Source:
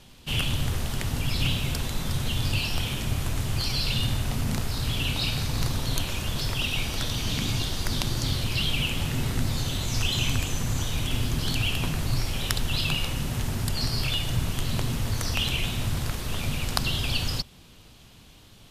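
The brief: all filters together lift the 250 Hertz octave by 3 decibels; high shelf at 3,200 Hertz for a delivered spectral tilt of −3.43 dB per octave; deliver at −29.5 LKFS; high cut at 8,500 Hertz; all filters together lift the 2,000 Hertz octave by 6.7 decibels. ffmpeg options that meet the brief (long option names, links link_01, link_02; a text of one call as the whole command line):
ffmpeg -i in.wav -af "lowpass=8500,equalizer=frequency=250:width_type=o:gain=4,equalizer=frequency=2000:width_type=o:gain=7.5,highshelf=frequency=3200:gain=4,volume=-5dB" out.wav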